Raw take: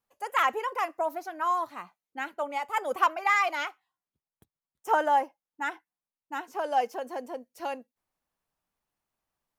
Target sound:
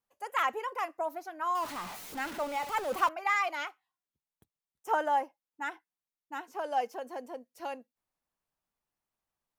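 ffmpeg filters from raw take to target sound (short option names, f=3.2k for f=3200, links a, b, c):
-filter_complex "[0:a]asettb=1/sr,asplit=3[a][b][c];[a]atrim=end=1.554[d];[b]atrim=start=1.55:end=3.09,asetpts=PTS-STARTPTS,afade=t=in:d=0.004:c=qsin,afade=t=out:st=1.536:d=0.004:c=qsin,aeval=exprs='val(0)+0.5*0.0251*sgn(val(0))':c=same[e];[c]atrim=start=3.086[f];[d][e]acrossfade=d=0.004:c1=hsin:c2=qsin[g];[g][f]acrossfade=d=0.004:c1=qsin:c2=hsin,volume=-4.5dB"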